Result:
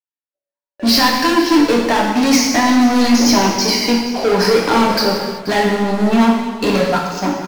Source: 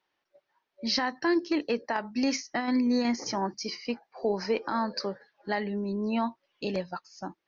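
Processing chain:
noise gate with hold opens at −48 dBFS
leveller curve on the samples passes 5
single-tap delay 481 ms −16 dB
reverb whose tail is shaped and stops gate 410 ms falling, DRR −2 dB
level +1.5 dB

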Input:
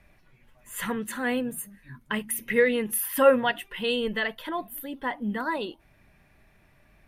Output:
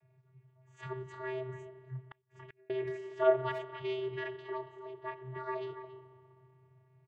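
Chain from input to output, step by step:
spring reverb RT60 2.7 s, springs 38/58 ms, chirp 80 ms, DRR 12.5 dB
channel vocoder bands 16, square 129 Hz
far-end echo of a speakerphone 280 ms, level −11 dB
0:02.06–0:02.70: gate with flip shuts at −29 dBFS, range −36 dB
one half of a high-frequency compander decoder only
level −8 dB

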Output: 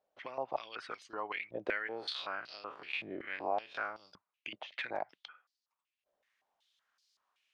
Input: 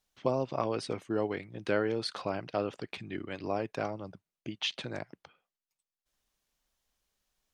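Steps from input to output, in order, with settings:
0:01.87–0:04.13: spectrum smeared in time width 86 ms
dynamic equaliser 2,200 Hz, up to +4 dB, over −46 dBFS, Q 0.95
downward compressor 4 to 1, threshold −37 dBFS, peak gain reduction 12.5 dB
band-pass on a step sequencer 5.3 Hz 590–4,700 Hz
level +14.5 dB

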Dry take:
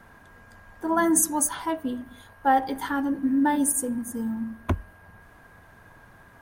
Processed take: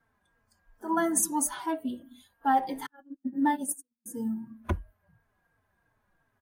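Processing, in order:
0:02.86–0:04.06: noise gate −22 dBFS, range −47 dB
noise reduction from a noise print of the clip's start 17 dB
barber-pole flanger 3.9 ms −2.9 Hz
level −1.5 dB

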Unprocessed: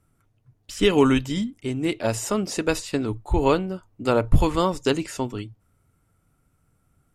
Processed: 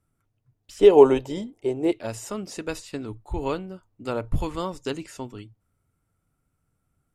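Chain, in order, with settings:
0:00.79–0:01.92: flat-topped bell 570 Hz +15.5 dB
level −8 dB

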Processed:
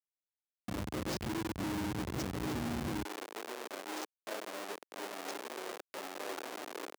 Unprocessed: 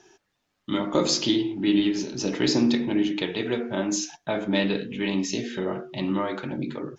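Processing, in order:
camcorder AGC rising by 28 dB per second
dynamic equaliser 3,200 Hz, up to −5 dB, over −43 dBFS, Q 2.1
downward compressor 2 to 1, threshold −26 dBFS, peak gain reduction 6 dB
repeating echo 697 ms, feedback 50%, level −14 dB
comparator with hysteresis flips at −24.5 dBFS
high-pass filter 65 Hz 24 dB per octave, from 0:03.05 380 Hz
level −6 dB

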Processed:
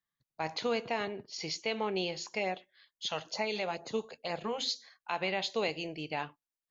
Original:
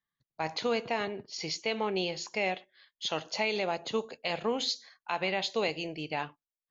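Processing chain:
0:02.39–0:04.66: auto-filter notch sine 2.2 Hz 260–3,400 Hz
level −2 dB

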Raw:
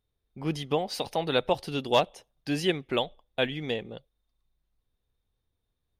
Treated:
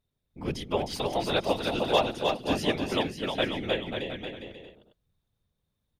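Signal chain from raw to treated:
random phases in short frames
on a send: bouncing-ball delay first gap 310 ms, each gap 0.75×, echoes 5
on the sum: level −1 dB

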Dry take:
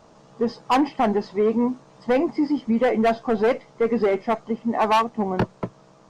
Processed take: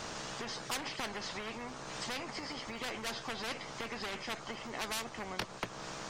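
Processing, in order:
downward compressor 2.5 to 1, threshold −36 dBFS, peak gain reduction 13 dB
every bin compressed towards the loudest bin 4 to 1
level +4.5 dB

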